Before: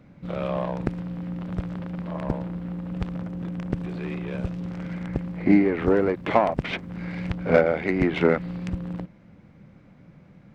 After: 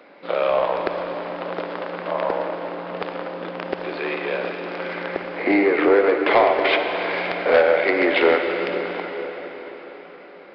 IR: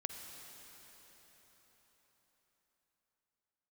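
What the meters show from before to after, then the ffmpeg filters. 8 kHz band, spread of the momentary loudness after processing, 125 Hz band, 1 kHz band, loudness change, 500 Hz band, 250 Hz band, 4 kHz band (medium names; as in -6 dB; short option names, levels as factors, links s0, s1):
no reading, 14 LU, -13.5 dB, +7.5 dB, +4.5 dB, +6.5 dB, -1.5 dB, +11.5 dB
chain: -filter_complex "[0:a]highpass=f=400:w=0.5412,highpass=f=400:w=1.3066,asplit=2[s0][s1];[s1]acompressor=threshold=0.0251:ratio=6,volume=1.19[s2];[s0][s2]amix=inputs=2:normalize=0,asoftclip=type=tanh:threshold=0.178[s3];[1:a]atrim=start_sample=2205[s4];[s3][s4]afir=irnorm=-1:irlink=0,aresample=11025,aresample=44100,volume=2.66"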